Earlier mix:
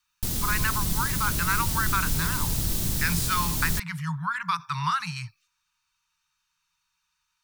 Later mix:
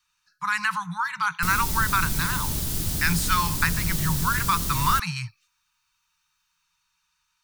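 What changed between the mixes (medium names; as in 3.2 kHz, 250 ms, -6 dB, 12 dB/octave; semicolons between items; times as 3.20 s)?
speech +3.5 dB; background: entry +1.20 s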